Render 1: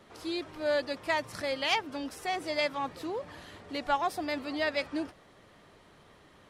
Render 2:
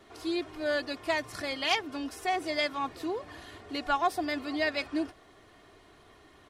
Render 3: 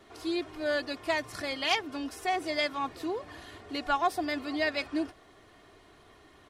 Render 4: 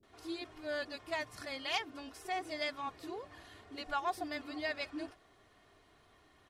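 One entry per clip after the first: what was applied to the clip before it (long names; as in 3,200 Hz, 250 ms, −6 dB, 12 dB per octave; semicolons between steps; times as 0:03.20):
comb filter 2.8 ms, depth 53%
no processing that can be heard
multiband delay without the direct sound lows, highs 30 ms, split 350 Hz; level −7.5 dB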